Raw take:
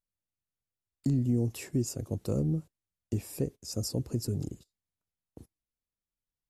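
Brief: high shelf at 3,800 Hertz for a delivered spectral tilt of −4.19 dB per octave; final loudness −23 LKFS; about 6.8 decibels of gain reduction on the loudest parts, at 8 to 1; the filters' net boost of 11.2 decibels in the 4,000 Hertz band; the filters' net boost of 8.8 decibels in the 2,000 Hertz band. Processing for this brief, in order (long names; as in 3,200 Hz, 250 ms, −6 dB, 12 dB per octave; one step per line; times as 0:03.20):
parametric band 2,000 Hz +5.5 dB
high-shelf EQ 3,800 Hz +8 dB
parametric band 4,000 Hz +8 dB
downward compressor 8 to 1, threshold −30 dBFS
level +12.5 dB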